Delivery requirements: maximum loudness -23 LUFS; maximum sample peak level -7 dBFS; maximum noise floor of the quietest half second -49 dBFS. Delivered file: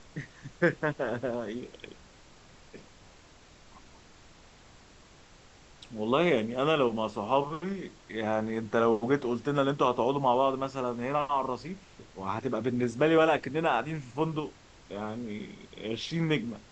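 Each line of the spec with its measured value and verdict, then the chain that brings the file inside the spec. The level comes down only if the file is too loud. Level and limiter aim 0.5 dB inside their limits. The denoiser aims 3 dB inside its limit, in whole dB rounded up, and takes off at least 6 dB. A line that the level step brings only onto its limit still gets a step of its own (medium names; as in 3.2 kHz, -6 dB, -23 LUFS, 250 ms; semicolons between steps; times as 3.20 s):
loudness -29.5 LUFS: pass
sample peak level -11.5 dBFS: pass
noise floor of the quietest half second -55 dBFS: pass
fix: none needed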